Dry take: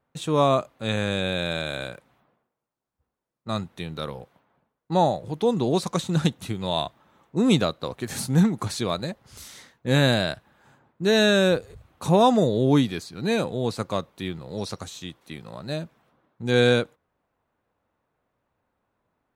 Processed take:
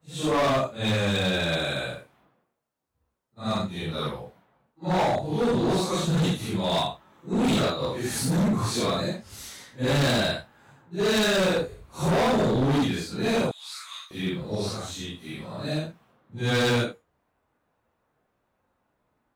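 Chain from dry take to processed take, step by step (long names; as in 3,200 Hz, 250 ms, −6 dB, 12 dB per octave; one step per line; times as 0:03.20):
random phases in long frames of 200 ms
0:13.51–0:14.11: Bessel high-pass filter 2,300 Hz, order 6
gain into a clipping stage and back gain 22.5 dB
level +2.5 dB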